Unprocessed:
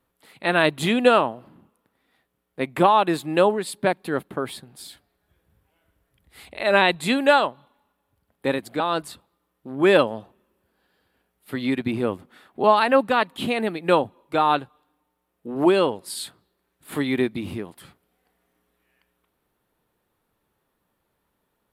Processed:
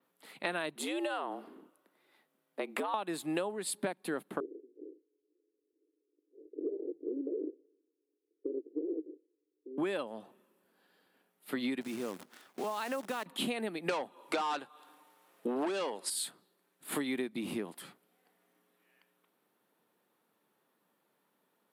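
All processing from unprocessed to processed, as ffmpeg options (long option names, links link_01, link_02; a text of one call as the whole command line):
ffmpeg -i in.wav -filter_complex "[0:a]asettb=1/sr,asplit=3[link_01][link_02][link_03];[link_01]atrim=end=0.754[link_04];[link_02]atrim=start=0.75:end=2.94,asetpts=PTS-STARTPTS,afade=type=in:duration=0.004:curve=qsin,afade=type=out:start_time=2.186:duration=0.004:curve=qsin,acompressor=threshold=-26dB:ratio=6:attack=3.2:release=140:knee=1:detection=peak,afreqshift=94[link_05];[link_03]atrim=start=2.936[link_06];[link_04][link_05]acrossfade=duration=0.004:curve1=hsin:curve2=qsin[link_07];[link_07][link_06]acrossfade=duration=0.004:curve1=qsin:curve2=hsin,asettb=1/sr,asplit=3[link_08][link_09][link_10];[link_08]atrim=end=4.404[link_11];[link_09]atrim=start=4.4:end=9.78,asetpts=PTS-STARTPTS,afade=type=in:duration=0.004:curve=qsin,afade=type=out:start_time=5.376:duration=0.004:curve=qsin,acompressor=threshold=-20dB:ratio=16:attack=3.2:release=140:knee=1:detection=peak,acrusher=samples=39:mix=1:aa=0.000001:lfo=1:lforange=23.4:lforate=2.4,asuperpass=centerf=370:order=8:qfactor=2.1[link_12];[link_10]atrim=start=9.776[link_13];[link_11][link_12]acrossfade=duration=0.004:curve1=hsin:curve2=qsin[link_14];[link_14][link_13]acrossfade=duration=0.004:curve1=qsin:curve2=hsin,asettb=1/sr,asplit=3[link_15][link_16][link_17];[link_15]atrim=end=11.814[link_18];[link_16]atrim=start=11.81:end=13.26,asetpts=PTS-STARTPTS,afade=type=in:duration=0.004:curve=qsin,afade=type=out:start_time=1.446:duration=0.004:curve=qsin,highpass=frequency=58:width=0.5412,highpass=frequency=58:width=1.3066,acompressor=threshold=-35dB:ratio=2.5:attack=3.2:release=140:knee=1:detection=peak,acrusher=bits=8:dc=4:mix=0:aa=0.000001[link_19];[link_17]atrim=start=13.256[link_20];[link_18][link_19]acrossfade=duration=0.004:curve1=hsin:curve2=qsin[link_21];[link_21][link_20]acrossfade=duration=0.004:curve1=qsin:curve2=hsin,asettb=1/sr,asplit=3[link_22][link_23][link_24];[link_22]atrim=end=13.894[link_25];[link_23]atrim=start=13.89:end=16.1,asetpts=PTS-STARTPTS,afade=type=in:duration=0.004:curve=qsin,afade=type=out:start_time=2.206:duration=0.004:curve=qsin,asplit=2[link_26][link_27];[link_27]highpass=frequency=720:poles=1,volume=21dB,asoftclip=type=tanh:threshold=-4.5dB[link_28];[link_26][link_28]amix=inputs=2:normalize=0,lowpass=frequency=7300:poles=1,volume=-6dB,acrossover=split=9500[link_29][link_30];[link_30]acompressor=threshold=-57dB:ratio=4:attack=1:release=60[link_31];[link_29][link_31]amix=inputs=2:normalize=0[link_32];[link_24]atrim=start=16.096[link_33];[link_25][link_32]acrossfade=duration=0.004:curve1=hsin:curve2=qsin[link_34];[link_34][link_33]acrossfade=duration=0.004:curve1=qsin:curve2=hsin,highpass=frequency=180:width=0.5412,highpass=frequency=180:width=1.3066,adynamicequalizer=threshold=0.00398:dfrequency=9300:dqfactor=0.92:tfrequency=9300:tqfactor=0.92:attack=5:release=100:ratio=0.375:range=3.5:mode=boostabove:tftype=bell,acompressor=threshold=-29dB:ratio=16,volume=-2dB" out.wav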